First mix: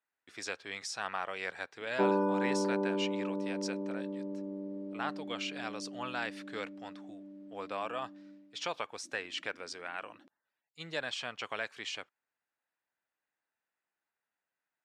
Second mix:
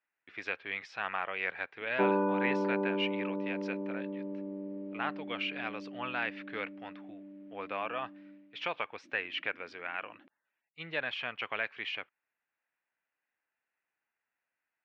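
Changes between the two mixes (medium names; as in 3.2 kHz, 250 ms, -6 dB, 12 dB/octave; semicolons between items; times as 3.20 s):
speech: add distance through air 75 m; master: add resonant low-pass 2.5 kHz, resonance Q 2.2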